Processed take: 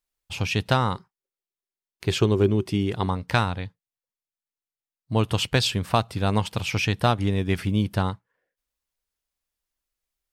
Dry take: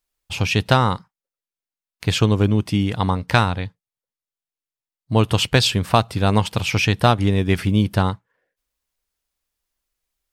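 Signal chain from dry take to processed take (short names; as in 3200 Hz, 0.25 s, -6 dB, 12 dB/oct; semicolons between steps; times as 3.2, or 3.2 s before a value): 0.95–3.06 bell 380 Hz +14.5 dB 0.24 oct; gain -5.5 dB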